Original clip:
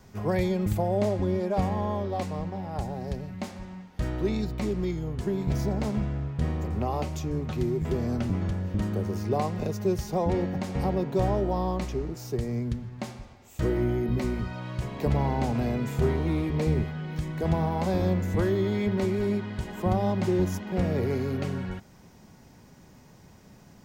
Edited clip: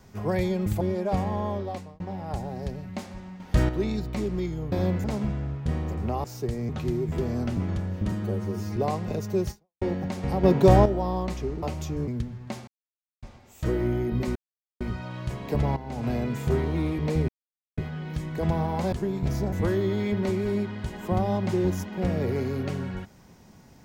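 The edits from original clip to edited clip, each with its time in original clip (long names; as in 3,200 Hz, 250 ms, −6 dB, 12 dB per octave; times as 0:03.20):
0:00.81–0:01.26: remove
0:02.03–0:02.45: fade out
0:03.85–0:04.14: clip gain +8.5 dB
0:05.17–0:05.77: swap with 0:17.95–0:18.27
0:06.97–0:07.42: swap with 0:12.14–0:12.59
0:08.85–0:09.28: time-stretch 1.5×
0:10.02–0:10.33: fade out exponential
0:10.95–0:11.37: clip gain +9 dB
0:13.19: splice in silence 0.55 s
0:14.32: splice in silence 0.45 s
0:15.28–0:15.60: fade in quadratic, from −12.5 dB
0:16.80: splice in silence 0.49 s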